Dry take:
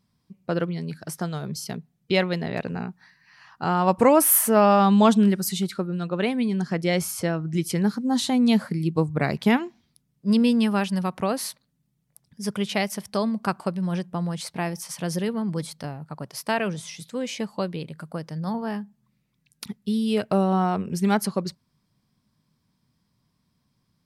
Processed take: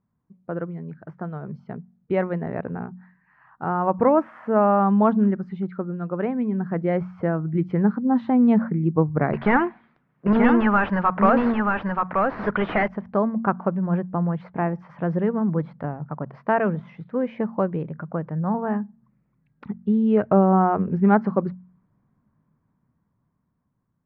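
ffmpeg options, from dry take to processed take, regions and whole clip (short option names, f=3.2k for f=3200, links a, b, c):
-filter_complex "[0:a]asettb=1/sr,asplit=3[a][b][c];[a]atrim=end=9.334[d];[b]atrim=start=9.33:end=12.88,asetpts=PTS-STARTPTS,afade=t=in:d=0.004:c=qsin,afade=t=out:st=3.546:d=0.004:c=qsin,tiltshelf=f=1.4k:g=-8.5,asplit=2[e][f];[f]highpass=f=720:p=1,volume=27dB,asoftclip=type=tanh:threshold=-8.5dB[g];[e][g]amix=inputs=2:normalize=0,lowpass=f=1.9k:p=1,volume=-6dB,aecho=1:1:930:0.668,atrim=end_sample=156555[h];[c]atrim=start=12.876[i];[d][h]acrossfade=d=0.004:c1=hsin:c2=qsin[j];[j][i]acrossfade=d=0.004:c1=qsin:c2=hsin,dynaudnorm=f=420:g=9:m=11.5dB,lowpass=f=1.6k:w=0.5412,lowpass=f=1.6k:w=1.3066,bandreject=f=45.53:t=h:w=4,bandreject=f=91.06:t=h:w=4,bandreject=f=136.59:t=h:w=4,bandreject=f=182.12:t=h:w=4,bandreject=f=227.65:t=h:w=4,volume=-4dB"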